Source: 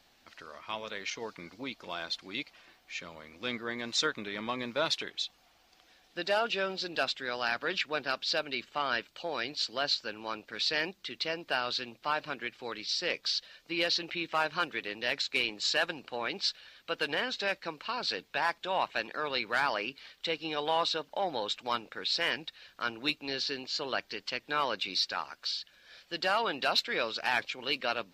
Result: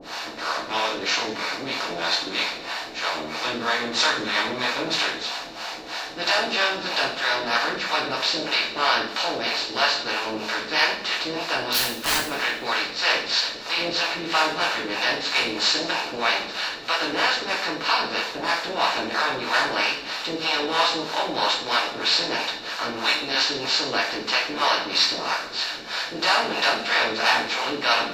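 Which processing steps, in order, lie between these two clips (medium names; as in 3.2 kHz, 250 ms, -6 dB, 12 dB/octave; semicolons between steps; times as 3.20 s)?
spectral levelling over time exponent 0.4; harmonic tremolo 3.1 Hz, depth 100%, crossover 520 Hz; 11.70–12.26 s: integer overflow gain 18.5 dB; two-slope reverb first 0.5 s, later 1.6 s, from -18 dB, DRR -5.5 dB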